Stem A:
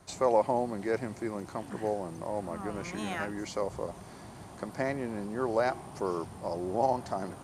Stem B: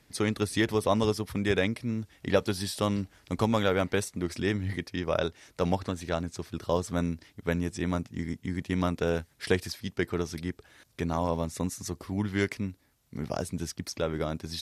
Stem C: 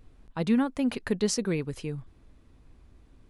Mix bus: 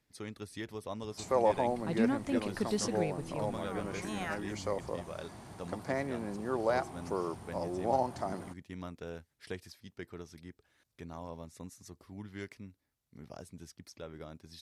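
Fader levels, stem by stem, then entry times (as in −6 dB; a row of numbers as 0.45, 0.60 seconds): −2.5, −15.5, −6.5 decibels; 1.10, 0.00, 1.50 seconds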